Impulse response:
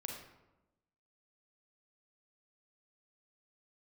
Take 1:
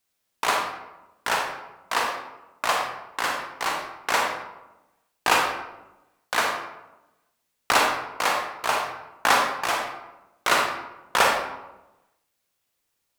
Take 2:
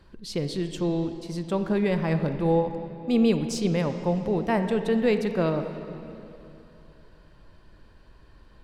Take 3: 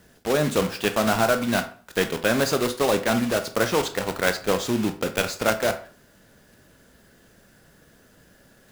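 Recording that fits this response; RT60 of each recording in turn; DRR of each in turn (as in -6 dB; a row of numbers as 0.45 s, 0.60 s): 1; 1.0 s, 2.9 s, 0.45 s; 0.5 dB, 8.0 dB, 7.5 dB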